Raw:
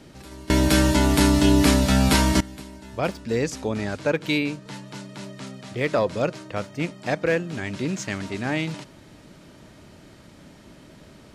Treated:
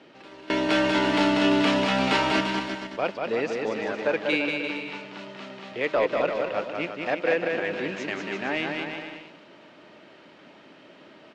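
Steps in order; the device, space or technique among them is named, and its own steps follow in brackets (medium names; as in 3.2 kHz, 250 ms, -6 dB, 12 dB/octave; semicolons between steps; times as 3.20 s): intercom (band-pass 350–3600 Hz; peaking EQ 2.8 kHz +5 dB 0.38 oct; saturation -13 dBFS, distortion -22 dB); treble shelf 8.5 kHz -11 dB; bouncing-ball echo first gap 190 ms, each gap 0.8×, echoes 5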